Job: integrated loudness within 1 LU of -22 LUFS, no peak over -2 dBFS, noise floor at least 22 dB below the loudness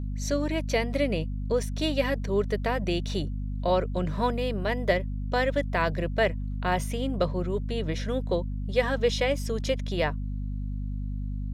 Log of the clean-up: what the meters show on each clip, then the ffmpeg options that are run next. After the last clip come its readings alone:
hum 50 Hz; highest harmonic 250 Hz; hum level -29 dBFS; loudness -28.5 LUFS; peak level -10.0 dBFS; loudness target -22.0 LUFS
-> -af "bandreject=f=50:t=h:w=4,bandreject=f=100:t=h:w=4,bandreject=f=150:t=h:w=4,bandreject=f=200:t=h:w=4,bandreject=f=250:t=h:w=4"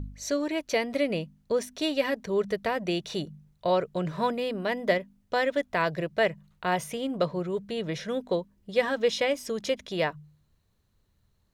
hum not found; loudness -29.0 LUFS; peak level -10.5 dBFS; loudness target -22.0 LUFS
-> -af "volume=2.24"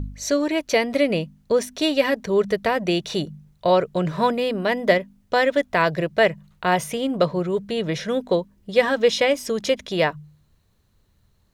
loudness -22.0 LUFS; peak level -3.5 dBFS; noise floor -62 dBFS

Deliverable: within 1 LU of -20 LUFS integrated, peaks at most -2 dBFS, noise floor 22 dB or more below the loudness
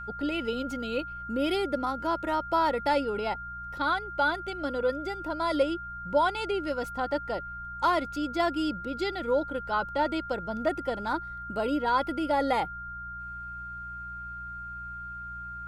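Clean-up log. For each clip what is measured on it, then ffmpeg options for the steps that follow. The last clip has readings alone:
hum 60 Hz; highest harmonic 180 Hz; hum level -45 dBFS; steady tone 1.4 kHz; tone level -37 dBFS; loudness -30.0 LUFS; peak level -13.0 dBFS; loudness target -20.0 LUFS
-> -af "bandreject=f=60:t=h:w=4,bandreject=f=120:t=h:w=4,bandreject=f=180:t=h:w=4"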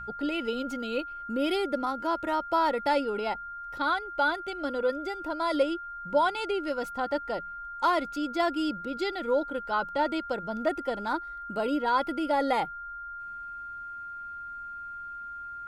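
hum not found; steady tone 1.4 kHz; tone level -37 dBFS
-> -af "bandreject=f=1400:w=30"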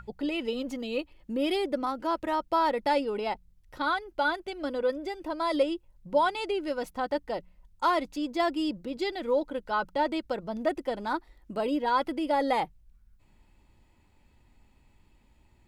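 steady tone not found; loudness -30.0 LUFS; peak level -13.5 dBFS; loudness target -20.0 LUFS
-> -af "volume=3.16"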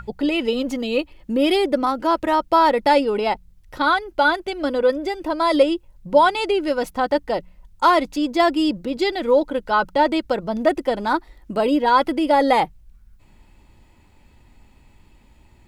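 loudness -20.0 LUFS; peak level -3.5 dBFS; noise floor -53 dBFS

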